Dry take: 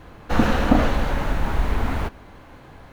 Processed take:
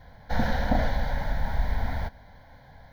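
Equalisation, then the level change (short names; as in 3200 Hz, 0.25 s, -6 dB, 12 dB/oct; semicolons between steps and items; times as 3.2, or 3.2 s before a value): fixed phaser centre 1800 Hz, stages 8; -4.0 dB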